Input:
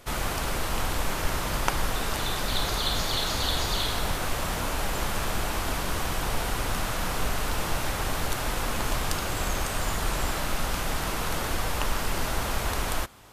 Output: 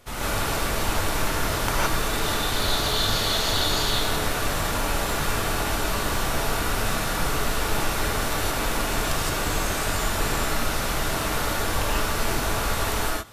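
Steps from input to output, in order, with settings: non-linear reverb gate 0.19 s rising, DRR -7 dB; gain -3.5 dB

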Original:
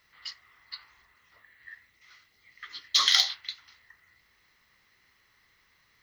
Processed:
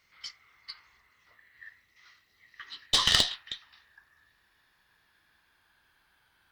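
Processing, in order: speed glide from 107% -> 78%; added harmonics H 2 -9 dB, 6 -26 dB, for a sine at -4 dBFS; gain -2 dB

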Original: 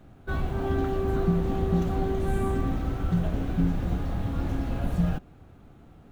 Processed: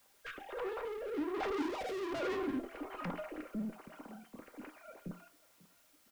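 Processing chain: sine-wave speech; Doppler pass-by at 1.85, 28 m/s, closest 4.4 m; high shelf 2100 Hz +9 dB; echo 0.542 s -21 dB; tube stage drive 43 dB, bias 0.45; rotary speaker horn 1.2 Hz; added noise white -77 dBFS; on a send at -4.5 dB: reverb RT60 0.35 s, pre-delay 3 ms; on the sum: gain +8.5 dB

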